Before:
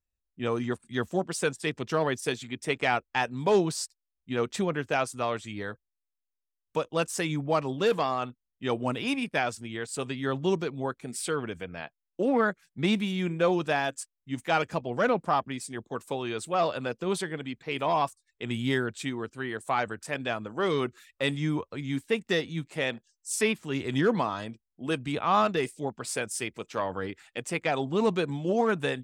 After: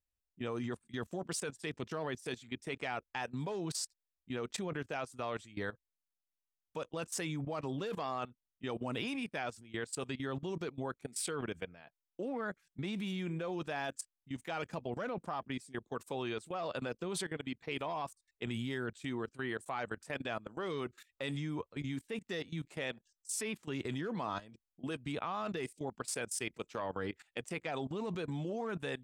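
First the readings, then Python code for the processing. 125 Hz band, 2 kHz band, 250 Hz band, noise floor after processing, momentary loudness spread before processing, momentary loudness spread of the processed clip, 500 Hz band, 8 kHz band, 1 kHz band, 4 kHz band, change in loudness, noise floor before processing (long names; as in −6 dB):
−8.0 dB, −10.0 dB, −9.5 dB, below −85 dBFS, 10 LU, 5 LU, −11.5 dB, −5.5 dB, −12.0 dB, −9.0 dB, −10.5 dB, −85 dBFS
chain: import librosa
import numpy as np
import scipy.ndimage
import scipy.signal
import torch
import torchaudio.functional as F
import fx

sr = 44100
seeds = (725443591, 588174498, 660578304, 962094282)

y = fx.level_steps(x, sr, step_db=18)
y = y * 10.0 ** (-1.5 / 20.0)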